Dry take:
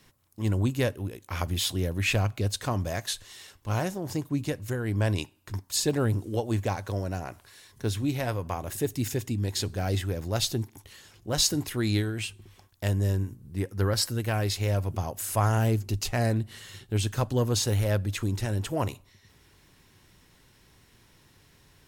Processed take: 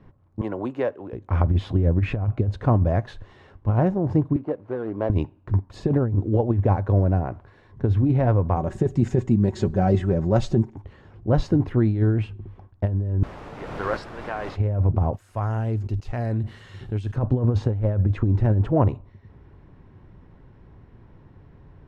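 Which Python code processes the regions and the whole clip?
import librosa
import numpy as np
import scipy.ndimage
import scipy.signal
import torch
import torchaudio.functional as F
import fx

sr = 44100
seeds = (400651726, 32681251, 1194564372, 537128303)

y = fx.chain(x, sr, fx.highpass(hz=540.0, slope=12),
    fx.band_squash(depth_pct=40), at=(0.41, 1.13))
y = fx.chain(y, sr, fx.median_filter(points=25),
    fx.highpass(hz=410.0, slope=12), at=(4.36, 5.1))
y = fx.chain(y, sr, fx.peak_eq(hz=7400.0, db=14.5, octaves=0.87),
    fx.comb(ms=5.3, depth=0.58), at=(8.56, 10.75))
y = fx.chain(y, sr, fx.highpass(hz=1000.0, slope=12),
    fx.quant_dither(seeds[0], bits=6, dither='triangular'),
    fx.pre_swell(db_per_s=25.0), at=(13.23, 14.56))
y = fx.chain(y, sr, fx.pre_emphasis(coefficient=0.9),
    fx.env_flatten(amount_pct=70), at=(15.13, 17.16))
y = scipy.signal.sosfilt(scipy.signal.butter(2, 1000.0, 'lowpass', fs=sr, output='sos'), y)
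y = fx.low_shelf(y, sr, hz=200.0, db=6.0)
y = fx.over_compress(y, sr, threshold_db=-24.0, ratio=-0.5)
y = y * 10.0 ** (6.5 / 20.0)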